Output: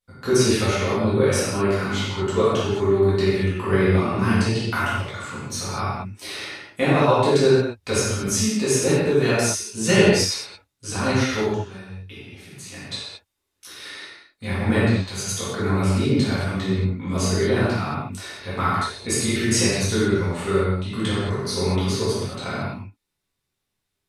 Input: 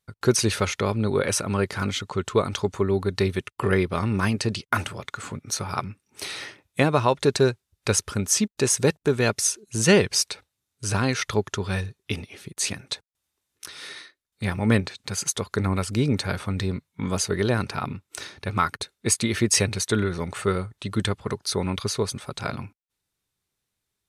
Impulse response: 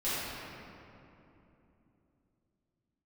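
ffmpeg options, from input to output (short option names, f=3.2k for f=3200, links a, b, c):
-filter_complex "[0:a]asplit=3[a][b][c];[a]afade=t=out:st=11.45:d=0.02[d];[b]acompressor=threshold=-39dB:ratio=4,afade=t=in:st=11.45:d=0.02,afade=t=out:st=12.72:d=0.02[e];[c]afade=t=in:st=12.72:d=0.02[f];[d][e][f]amix=inputs=3:normalize=0[g];[1:a]atrim=start_sample=2205,afade=t=out:st=0.29:d=0.01,atrim=end_sample=13230[h];[g][h]afir=irnorm=-1:irlink=0,volume=-4.5dB"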